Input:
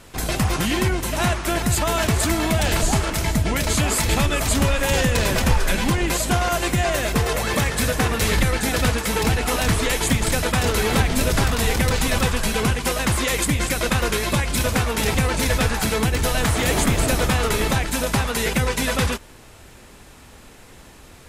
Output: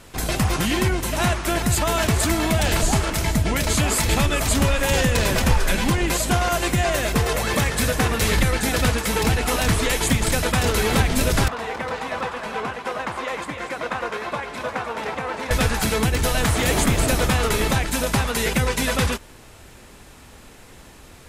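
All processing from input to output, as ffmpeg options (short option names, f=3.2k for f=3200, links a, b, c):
-filter_complex "[0:a]asettb=1/sr,asplit=3[a][b][c];[a]atrim=end=11.484[d];[b]atrim=start=11.48:end=15.51,asetpts=PTS-STARTPTS,afade=t=in:d=0.004:c=qsin,afade=t=out:st=4.026:d=0.004:c=qsin,bandpass=f=910:t=q:w=1,aecho=1:1:303:0.355,atrim=end_sample=177723[e];[c]atrim=start=15.506[f];[d][e]acrossfade=d=0.004:c1=hsin:c2=qsin[g];[g][f]acrossfade=d=0.004:c1=qsin:c2=hsin"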